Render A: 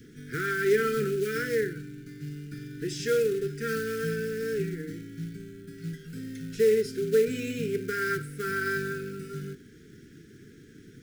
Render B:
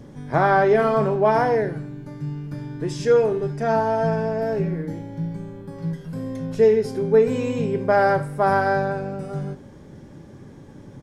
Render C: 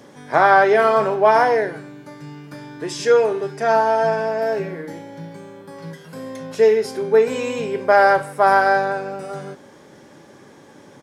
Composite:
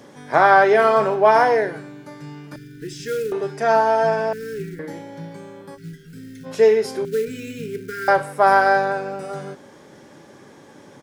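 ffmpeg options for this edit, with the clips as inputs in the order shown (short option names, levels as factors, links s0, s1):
-filter_complex "[0:a]asplit=4[s0][s1][s2][s3];[2:a]asplit=5[s4][s5][s6][s7][s8];[s4]atrim=end=2.562[s9];[s0]atrim=start=2.558:end=3.322[s10];[s5]atrim=start=3.318:end=4.332[s11];[s1]atrim=start=4.328:end=4.792[s12];[s6]atrim=start=4.788:end=5.78[s13];[s2]atrim=start=5.74:end=6.47[s14];[s7]atrim=start=6.43:end=7.052[s15];[s3]atrim=start=7.048:end=8.082[s16];[s8]atrim=start=8.078[s17];[s9][s10]acrossfade=d=0.004:c1=hsin:c2=hsin[s18];[s18][s11]acrossfade=d=0.004:c1=hsin:c2=hsin[s19];[s19][s12]acrossfade=d=0.004:c1=hsin:c2=hsin[s20];[s20][s13]acrossfade=d=0.004:c1=hsin:c2=hsin[s21];[s21][s14]acrossfade=d=0.04:c1=tri:c2=tri[s22];[s22][s15]acrossfade=d=0.04:c1=tri:c2=tri[s23];[s23][s16]acrossfade=d=0.004:c1=hsin:c2=hsin[s24];[s24][s17]acrossfade=d=0.004:c1=hsin:c2=hsin"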